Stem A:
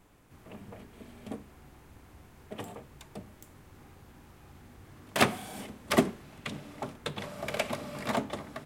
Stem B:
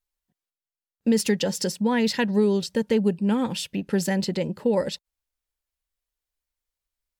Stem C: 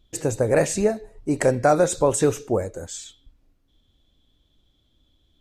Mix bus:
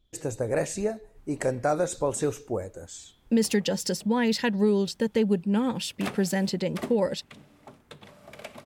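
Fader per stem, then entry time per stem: −10.5, −2.0, −7.5 decibels; 0.85, 2.25, 0.00 seconds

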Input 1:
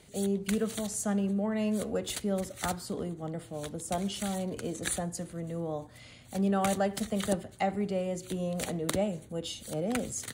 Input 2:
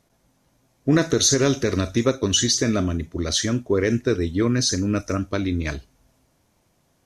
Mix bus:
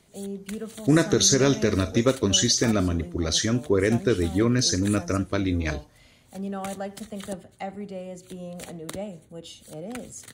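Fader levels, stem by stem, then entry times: −4.5, −1.0 decibels; 0.00, 0.00 seconds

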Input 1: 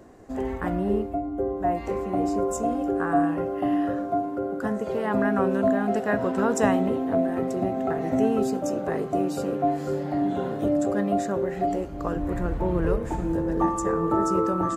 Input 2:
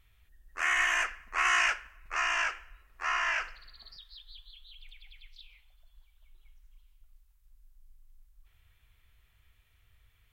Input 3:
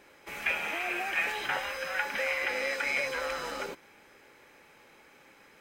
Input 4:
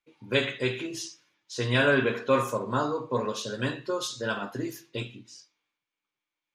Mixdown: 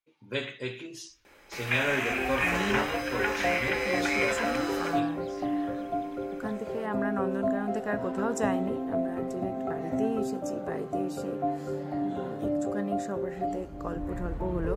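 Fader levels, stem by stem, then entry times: −6.0, −9.0, +1.0, −7.0 decibels; 1.80, 1.10, 1.25, 0.00 seconds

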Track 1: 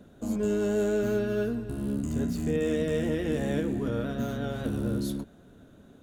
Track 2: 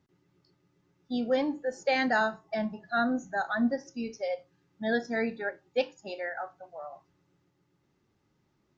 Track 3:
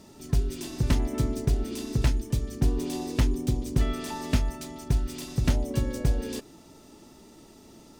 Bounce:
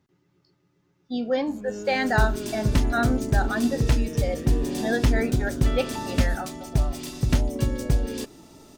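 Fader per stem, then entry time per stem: −8.5, +2.5, +2.5 decibels; 1.25, 0.00, 1.85 seconds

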